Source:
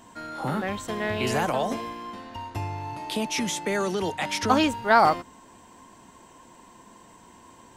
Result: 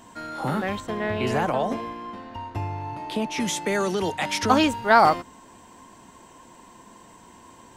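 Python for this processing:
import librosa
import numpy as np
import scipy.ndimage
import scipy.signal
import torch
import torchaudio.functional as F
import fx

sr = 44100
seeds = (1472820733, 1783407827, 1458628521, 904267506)

y = fx.high_shelf(x, sr, hz=3600.0, db=-11.5, at=(0.8, 3.4))
y = y * 10.0 ** (2.0 / 20.0)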